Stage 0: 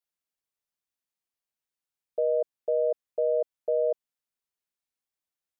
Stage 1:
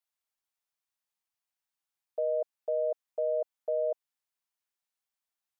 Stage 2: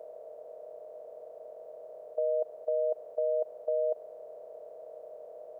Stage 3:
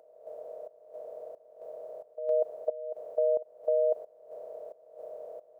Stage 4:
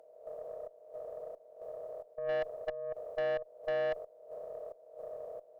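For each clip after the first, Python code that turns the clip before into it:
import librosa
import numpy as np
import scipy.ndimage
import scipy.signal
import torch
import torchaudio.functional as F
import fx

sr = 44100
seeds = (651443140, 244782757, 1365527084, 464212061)

y1 = fx.low_shelf_res(x, sr, hz=600.0, db=-6.5, q=1.5)
y2 = fx.bin_compress(y1, sr, power=0.2)
y3 = fx.volume_shaper(y2, sr, bpm=89, per_beat=1, depth_db=-17, release_ms=265.0, shape='slow start')
y3 = y3 * librosa.db_to_amplitude(3.5)
y4 = fx.tube_stage(y3, sr, drive_db=29.0, bias=0.25)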